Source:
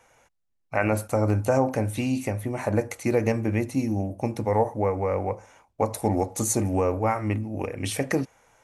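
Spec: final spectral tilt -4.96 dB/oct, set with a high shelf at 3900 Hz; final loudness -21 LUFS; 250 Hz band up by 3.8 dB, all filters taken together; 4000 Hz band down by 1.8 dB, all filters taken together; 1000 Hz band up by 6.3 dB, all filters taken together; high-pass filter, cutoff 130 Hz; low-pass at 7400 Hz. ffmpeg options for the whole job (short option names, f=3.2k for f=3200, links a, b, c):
-af "highpass=130,lowpass=7.4k,equalizer=f=250:t=o:g=4.5,equalizer=f=1k:t=o:g=8,highshelf=f=3.9k:g=6.5,equalizer=f=4k:t=o:g=-7,volume=2.5dB"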